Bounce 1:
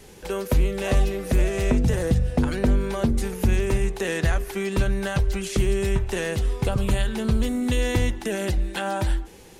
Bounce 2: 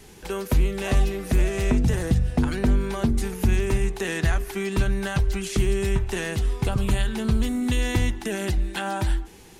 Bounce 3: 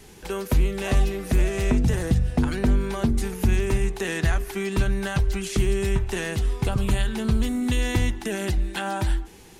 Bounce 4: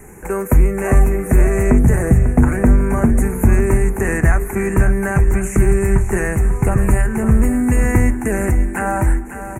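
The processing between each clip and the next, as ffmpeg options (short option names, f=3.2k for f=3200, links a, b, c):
-af "equalizer=f=530:w=4.5:g=-9"
-af anull
-af "asuperstop=centerf=4000:order=8:qfactor=0.84,aecho=1:1:546|1092|1638|2184|2730:0.282|0.144|0.0733|0.0374|0.0191,volume=8.5dB"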